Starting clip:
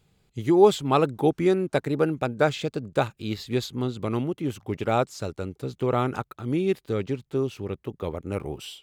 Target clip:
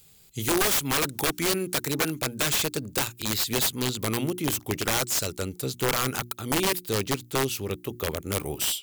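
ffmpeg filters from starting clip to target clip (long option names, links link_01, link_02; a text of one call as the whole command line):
ffmpeg -i in.wav -filter_complex "[0:a]acrossover=split=1100[link_01][link_02];[link_01]alimiter=limit=-17.5dB:level=0:latency=1:release=432[link_03];[link_02]highshelf=frequency=2400:gain=6[link_04];[link_03][link_04]amix=inputs=2:normalize=0,acontrast=34,aemphasis=mode=production:type=75fm,bandreject=frequency=60:width_type=h:width=6,bandreject=frequency=120:width_type=h:width=6,bandreject=frequency=180:width_type=h:width=6,bandreject=frequency=240:width_type=h:width=6,bandreject=frequency=300:width_type=h:width=6,bandreject=frequency=360:width_type=h:width=6,aeval=exprs='(mod(5.01*val(0)+1,2)-1)/5.01':channel_layout=same,volume=-3.5dB" out.wav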